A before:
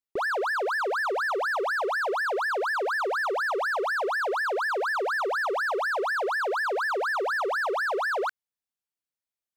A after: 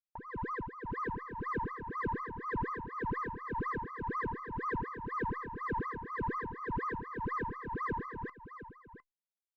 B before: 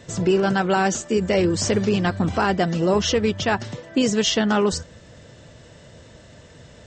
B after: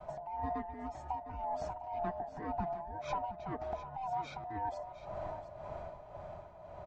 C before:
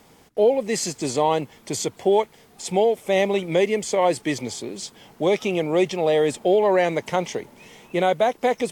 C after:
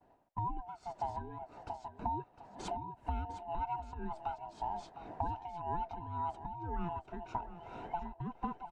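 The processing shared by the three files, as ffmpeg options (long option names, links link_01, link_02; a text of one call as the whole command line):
ffmpeg -i in.wav -af "afftfilt=real='real(if(lt(b,1008),b+24*(1-2*mod(floor(b/24),2)),b),0)':imag='imag(if(lt(b,1008),b+24*(1-2*mod(floor(b/24),2)),b),0)':win_size=2048:overlap=0.75,agate=range=-33dB:threshold=-46dB:ratio=3:detection=peak,lowpass=1000,aemphasis=mode=production:type=50kf,dynaudnorm=framelen=460:gausssize=7:maxgain=14dB,alimiter=limit=-12dB:level=0:latency=1:release=264,acompressor=threshold=-35dB:ratio=5,tremolo=f=1.9:d=0.72,aecho=1:1:706:0.224" -ar 48000 -c:a libopus -b:a 256k out.opus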